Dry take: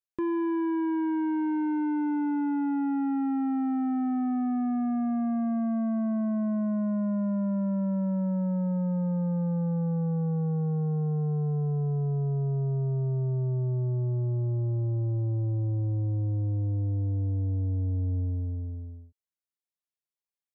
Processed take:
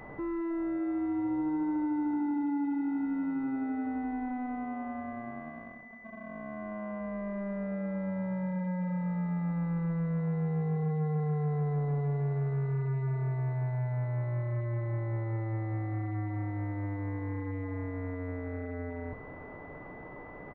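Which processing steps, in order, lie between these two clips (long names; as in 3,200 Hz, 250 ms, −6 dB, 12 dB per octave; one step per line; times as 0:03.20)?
sign of each sample alone
comb filter 6.7 ms, depth 94%
repeating echo 585 ms, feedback 40%, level −17 dB
switching amplifier with a slow clock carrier 2,000 Hz
level −7.5 dB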